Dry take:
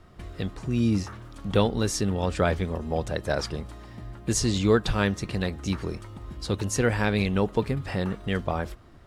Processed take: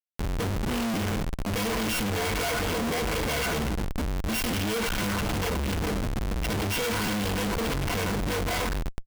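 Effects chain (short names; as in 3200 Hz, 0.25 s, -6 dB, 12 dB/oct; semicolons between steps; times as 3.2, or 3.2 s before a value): sample sorter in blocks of 16 samples; ripple EQ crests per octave 1.8, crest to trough 16 dB; Schroeder reverb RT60 0.43 s, combs from 28 ms, DRR 11 dB; dynamic EQ 280 Hz, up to -5 dB, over -33 dBFS, Q 0.72; comb 4 ms, depth 72%; delay with a stepping band-pass 0.12 s, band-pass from 1400 Hz, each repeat 1.4 oct, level -4.5 dB; Schmitt trigger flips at -32.5 dBFS; upward compressor, threshold -27 dBFS; crackling interface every 0.51 s, samples 512, repeat, from 0.93; gain -3.5 dB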